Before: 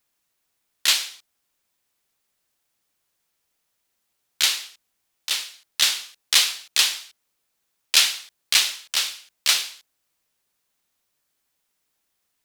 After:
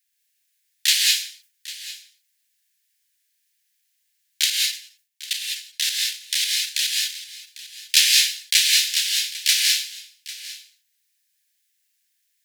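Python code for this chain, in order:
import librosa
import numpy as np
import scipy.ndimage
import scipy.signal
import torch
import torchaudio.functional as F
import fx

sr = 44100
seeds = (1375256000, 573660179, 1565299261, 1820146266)

y = scipy.signal.sosfilt(scipy.signal.butter(12, 1600.0, 'highpass', fs=sr, output='sos'), x)
y = fx.high_shelf(y, sr, hz=4200.0, db=2.5)
y = fx.level_steps(y, sr, step_db=21, at=(4.44, 6.96))
y = y + 10.0 ** (-17.0 / 20.0) * np.pad(y, (int(799 * sr / 1000.0), 0))[:len(y)]
y = fx.rev_gated(y, sr, seeds[0], gate_ms=230, shape='rising', drr_db=-1.0)
y = fx.sustainer(y, sr, db_per_s=150.0)
y = y * 10.0 ** (-1.0 / 20.0)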